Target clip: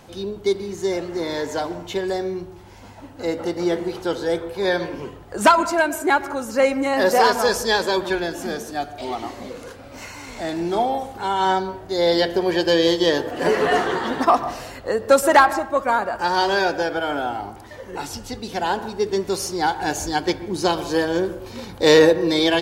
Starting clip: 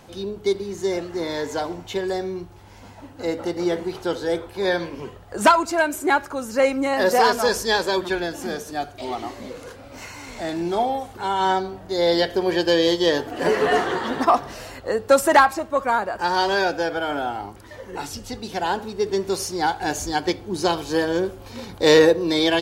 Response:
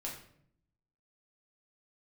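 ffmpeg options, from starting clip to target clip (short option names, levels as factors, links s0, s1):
-filter_complex "[0:a]asplit=2[s0][s1];[1:a]atrim=start_sample=2205,lowpass=2200,adelay=121[s2];[s1][s2]afir=irnorm=-1:irlink=0,volume=0.211[s3];[s0][s3]amix=inputs=2:normalize=0,volume=1.12"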